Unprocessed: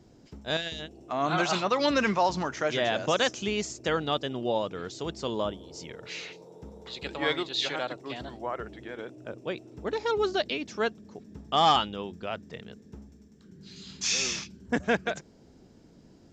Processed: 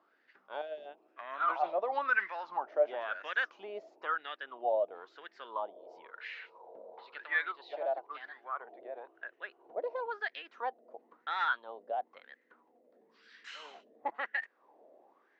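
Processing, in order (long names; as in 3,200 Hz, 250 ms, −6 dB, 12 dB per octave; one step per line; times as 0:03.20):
gliding playback speed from 92% → 120%
in parallel at +1 dB: downward compressor, threshold −41 dBFS, peak gain reduction 21 dB
on the sum: LFO wah 0.99 Hz 620–1,800 Hz, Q 6.9
Chebyshev band-pass filter 360–3,600 Hz, order 2
level +4 dB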